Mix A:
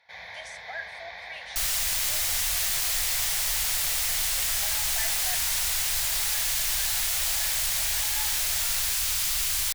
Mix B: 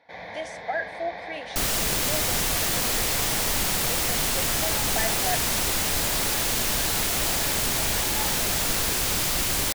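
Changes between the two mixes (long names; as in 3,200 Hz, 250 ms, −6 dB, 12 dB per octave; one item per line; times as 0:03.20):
first sound −4.5 dB
second sound: add parametric band 290 Hz +3 dB 1.6 octaves
master: remove guitar amp tone stack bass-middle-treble 10-0-10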